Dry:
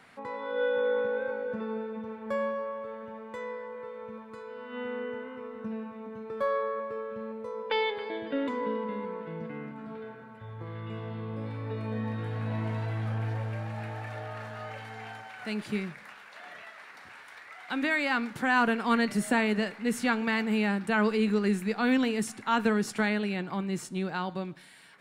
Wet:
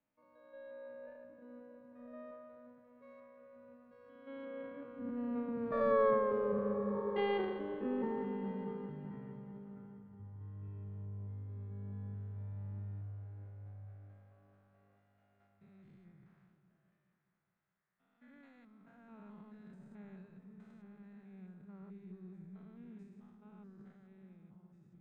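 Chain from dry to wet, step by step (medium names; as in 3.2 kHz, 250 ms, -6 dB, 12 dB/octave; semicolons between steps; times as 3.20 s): spectrogram pixelated in time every 200 ms; Doppler pass-by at 5.99 s, 34 m/s, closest 19 m; RIAA curve playback; transient shaper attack 0 dB, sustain +8 dB; delay with an opening low-pass 210 ms, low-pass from 200 Hz, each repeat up 1 oct, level -6 dB; three bands expanded up and down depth 40%; trim -4 dB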